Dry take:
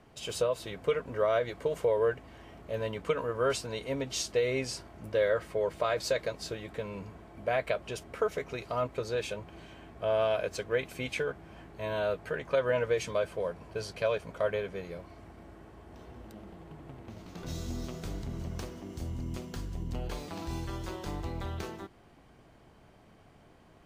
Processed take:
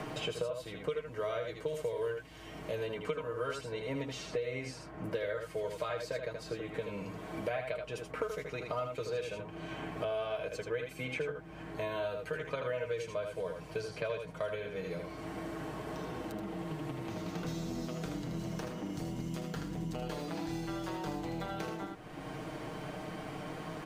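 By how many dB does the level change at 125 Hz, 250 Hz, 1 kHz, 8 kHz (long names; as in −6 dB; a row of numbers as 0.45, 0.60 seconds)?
−2.0, +1.5, −3.5, −8.0 decibels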